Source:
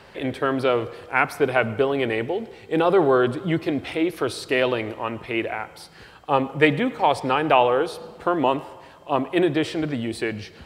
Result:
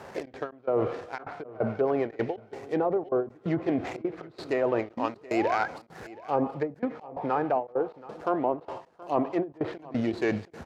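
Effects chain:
running median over 15 samples
treble cut that deepens with the level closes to 680 Hz, closed at −15 dBFS
high-pass filter 140 Hz 6 dB per octave
parametric band 720 Hz +4 dB 0.43 octaves
reversed playback
downward compressor 6 to 1, threshold −27 dBFS, peak gain reduction 13.5 dB
reversed playback
sound drawn into the spectrogram rise, 0:04.96–0:05.68, 220–1,700 Hz −37 dBFS
gate pattern "xxx.xx..xxx" 178 BPM −24 dB
on a send: single-tap delay 726 ms −19.5 dB
on the sum: every ending faded ahead of time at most 230 dB per second
level +4.5 dB

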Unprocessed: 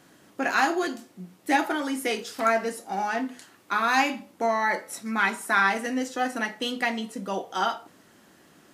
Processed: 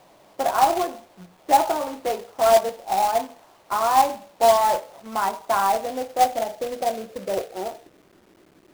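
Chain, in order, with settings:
graphic EQ with 15 bands 250 Hz −8 dB, 630 Hz +9 dB, 1,600 Hz −6 dB, 6,300 Hz −10 dB
low-pass filter sweep 1,000 Hz → 350 Hz, 0:05.62–0:08.07
log-companded quantiser 4 bits
level −2 dB

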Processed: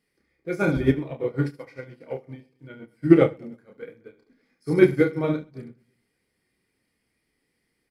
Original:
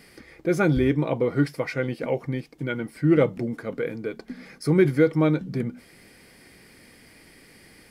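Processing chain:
spectral magnitudes quantised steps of 15 dB
reverse bouncing-ball delay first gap 30 ms, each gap 1.4×, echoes 5
expander for the loud parts 2.5 to 1, over −32 dBFS
level +4.5 dB

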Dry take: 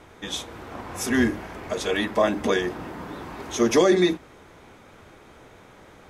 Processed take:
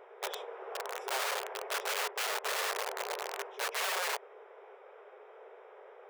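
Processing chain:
Savitzky-Golay smoothing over 25 samples
tilt shelving filter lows +8 dB, about 800 Hz
reversed playback
downward compressor 12 to 1, threshold −22 dBFS, peak gain reduction 13.5 dB
reversed playback
wrap-around overflow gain 25.5 dB
linear-phase brick-wall high-pass 380 Hz
level −2.5 dB

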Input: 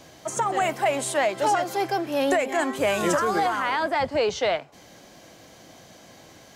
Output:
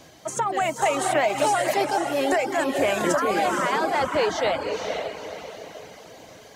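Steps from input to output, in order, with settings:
feedback delay with all-pass diffusion 497 ms, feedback 42%, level −3.5 dB
reverb reduction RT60 0.54 s
0:00.82–0:01.85: multiband upward and downward compressor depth 100%

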